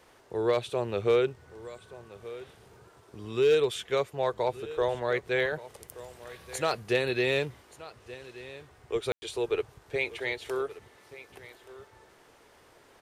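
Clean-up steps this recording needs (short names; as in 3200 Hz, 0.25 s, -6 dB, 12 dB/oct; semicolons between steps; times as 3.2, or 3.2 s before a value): clip repair -17 dBFS; room tone fill 9.12–9.22; inverse comb 1.177 s -17.5 dB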